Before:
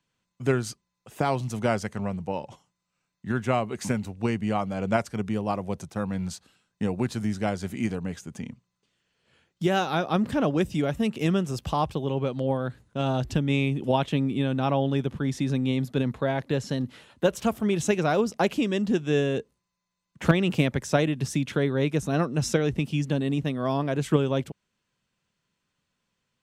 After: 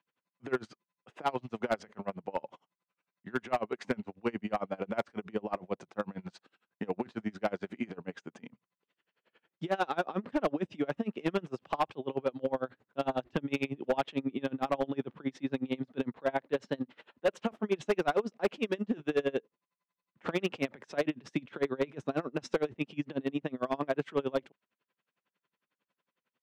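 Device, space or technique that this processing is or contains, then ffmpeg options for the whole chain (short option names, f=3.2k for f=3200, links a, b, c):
helicopter radio: -af "highpass=300,lowpass=2.6k,aeval=exprs='val(0)*pow(10,-29*(0.5-0.5*cos(2*PI*11*n/s))/20)':c=same,asoftclip=type=hard:threshold=-24dB,volume=3dB"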